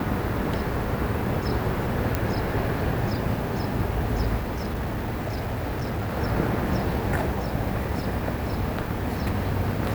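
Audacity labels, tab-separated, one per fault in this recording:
2.150000	2.150000	pop
4.390000	6.170000	clipped -24.5 dBFS

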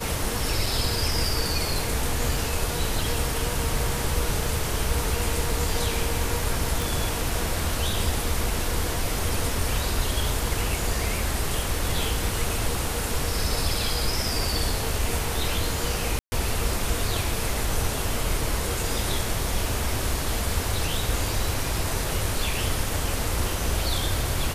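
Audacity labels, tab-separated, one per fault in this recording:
0.660000	0.660000	gap 2.9 ms
6.820000	6.820000	pop
16.190000	16.320000	gap 0.13 s

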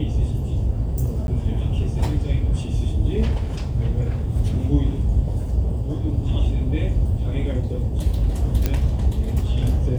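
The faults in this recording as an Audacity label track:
1.270000	1.280000	gap 11 ms
8.660000	8.660000	pop -7 dBFS

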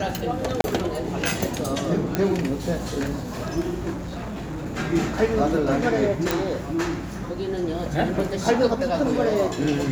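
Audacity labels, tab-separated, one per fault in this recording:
0.610000	0.640000	gap 31 ms
2.150000	2.150000	pop -8 dBFS
3.920000	4.670000	clipped -28 dBFS
6.310000	6.310000	pop

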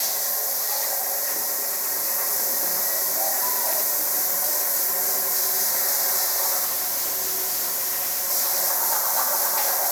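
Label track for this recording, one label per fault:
6.640000	8.310000	clipped -22 dBFS

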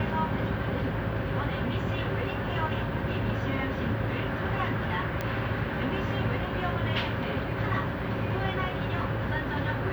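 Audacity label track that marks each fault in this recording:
5.210000	5.210000	pop -17 dBFS

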